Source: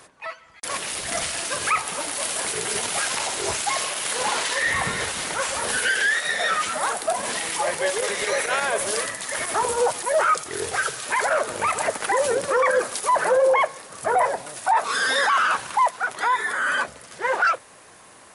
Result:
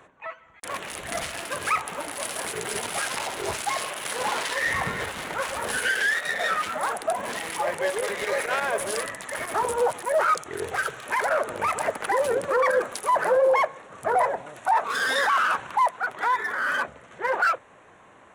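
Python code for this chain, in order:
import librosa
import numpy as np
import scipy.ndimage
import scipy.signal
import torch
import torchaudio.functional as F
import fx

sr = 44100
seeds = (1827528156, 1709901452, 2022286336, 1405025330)

y = fx.wiener(x, sr, points=9)
y = F.gain(torch.from_numpy(y), -1.5).numpy()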